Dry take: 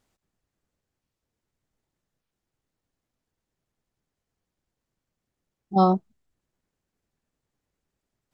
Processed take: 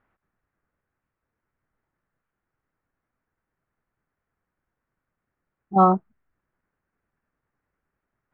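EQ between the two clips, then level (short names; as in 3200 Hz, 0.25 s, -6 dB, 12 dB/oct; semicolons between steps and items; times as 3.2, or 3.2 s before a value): LPF 2300 Hz 24 dB/oct; bell 1400 Hz +9.5 dB 1.2 oct; 0.0 dB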